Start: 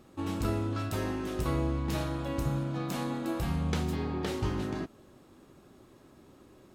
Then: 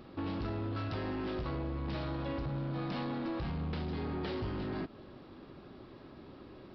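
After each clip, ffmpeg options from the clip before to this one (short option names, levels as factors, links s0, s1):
-af "acompressor=threshold=0.0178:ratio=6,aresample=11025,asoftclip=type=tanh:threshold=0.015,aresample=44100,volume=1.78"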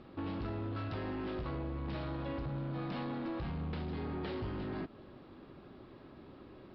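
-af "lowpass=4100,volume=0.794"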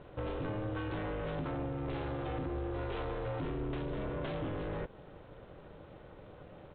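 -af "aresample=8000,aresample=44100,aeval=exprs='val(0)*sin(2*PI*210*n/s)':c=same,volume=1.68"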